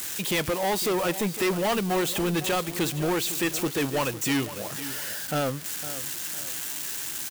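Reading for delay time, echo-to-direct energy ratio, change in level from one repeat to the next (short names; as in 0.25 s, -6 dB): 0.507 s, -13.5 dB, -8.0 dB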